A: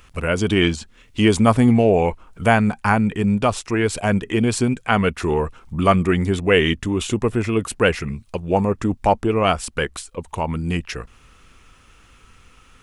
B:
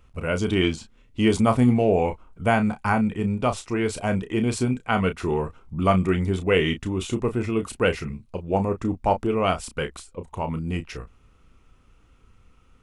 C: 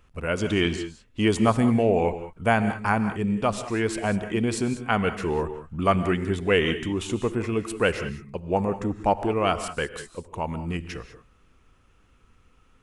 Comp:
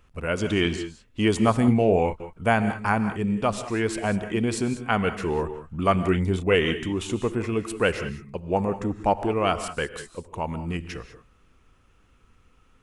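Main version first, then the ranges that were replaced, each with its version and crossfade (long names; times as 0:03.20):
C
0:01.68–0:02.20: punch in from B
0:06.08–0:06.55: punch in from B
not used: A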